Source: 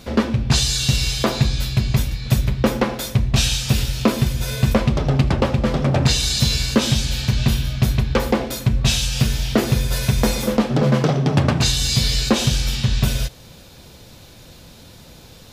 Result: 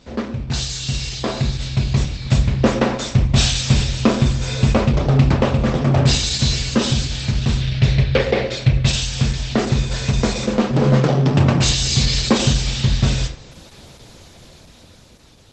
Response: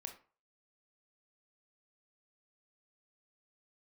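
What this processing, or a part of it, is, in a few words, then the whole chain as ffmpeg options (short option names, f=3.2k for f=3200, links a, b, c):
speakerphone in a meeting room: -filter_complex "[0:a]asplit=3[a][b][c];[a]afade=t=out:st=7.6:d=0.02[d];[b]equalizer=f=125:t=o:w=1:g=7,equalizer=f=250:t=o:w=1:g=-8,equalizer=f=500:t=o:w=1:g=9,equalizer=f=1k:t=o:w=1:g=-8,equalizer=f=2k:t=o:w=1:g=9,equalizer=f=4k:t=o:w=1:g=6,equalizer=f=8k:t=o:w=1:g=-7,afade=t=in:st=7.6:d=0.02,afade=t=out:st=8.85:d=0.02[e];[c]afade=t=in:st=8.85:d=0.02[f];[d][e][f]amix=inputs=3:normalize=0[g];[1:a]atrim=start_sample=2205[h];[g][h]afir=irnorm=-1:irlink=0,dynaudnorm=f=510:g=7:m=15dB,volume=-1dB" -ar 48000 -c:a libopus -b:a 12k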